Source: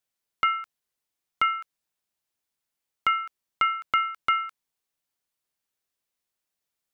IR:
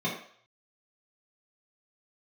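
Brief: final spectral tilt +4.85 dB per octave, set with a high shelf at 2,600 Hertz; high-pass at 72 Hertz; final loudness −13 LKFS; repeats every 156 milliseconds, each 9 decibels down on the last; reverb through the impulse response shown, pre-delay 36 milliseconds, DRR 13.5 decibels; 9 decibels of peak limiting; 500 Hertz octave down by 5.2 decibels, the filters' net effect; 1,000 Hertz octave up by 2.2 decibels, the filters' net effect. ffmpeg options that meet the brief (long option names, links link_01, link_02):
-filter_complex "[0:a]highpass=72,equalizer=frequency=500:width_type=o:gain=-8.5,equalizer=frequency=1000:width_type=o:gain=3.5,highshelf=frequency=2600:gain=4.5,alimiter=limit=-17.5dB:level=0:latency=1,aecho=1:1:156|312|468|624:0.355|0.124|0.0435|0.0152,asplit=2[link_01][link_02];[1:a]atrim=start_sample=2205,adelay=36[link_03];[link_02][link_03]afir=irnorm=-1:irlink=0,volume=-22.5dB[link_04];[link_01][link_04]amix=inputs=2:normalize=0,volume=16dB"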